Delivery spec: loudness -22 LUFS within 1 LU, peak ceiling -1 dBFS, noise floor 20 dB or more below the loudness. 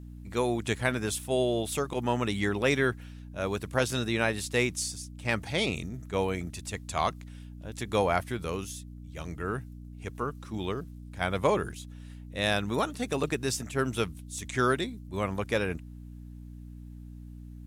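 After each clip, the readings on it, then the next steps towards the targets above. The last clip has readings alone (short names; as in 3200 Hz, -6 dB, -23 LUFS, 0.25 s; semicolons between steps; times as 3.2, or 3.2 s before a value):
hum 60 Hz; harmonics up to 300 Hz; hum level -41 dBFS; loudness -30.5 LUFS; peak -10.5 dBFS; loudness target -22.0 LUFS
-> de-hum 60 Hz, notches 5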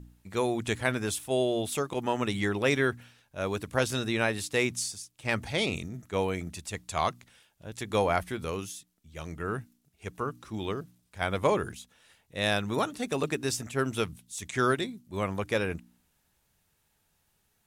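hum none; loudness -30.5 LUFS; peak -10.0 dBFS; loudness target -22.0 LUFS
-> gain +8.5 dB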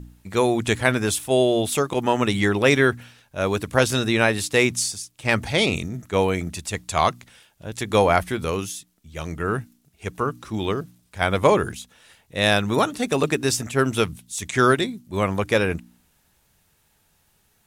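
loudness -22.0 LUFS; peak -1.5 dBFS; noise floor -64 dBFS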